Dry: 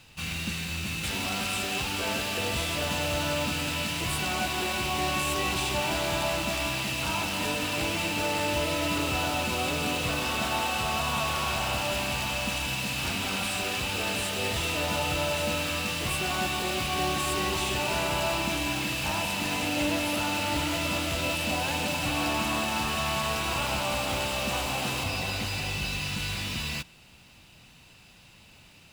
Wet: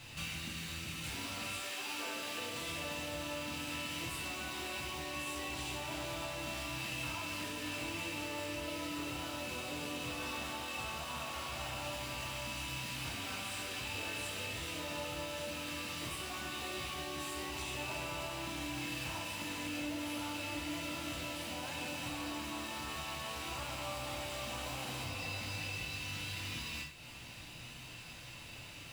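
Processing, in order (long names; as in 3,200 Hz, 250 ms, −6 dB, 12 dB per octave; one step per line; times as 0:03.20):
0:01.57–0:02.67: high-pass filter 460 Hz → 130 Hz 12 dB per octave
downward compressor 8 to 1, threshold −43 dBFS, peak gain reduction 18.5 dB
reverb whose tail is shaped and stops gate 180 ms falling, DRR −3 dB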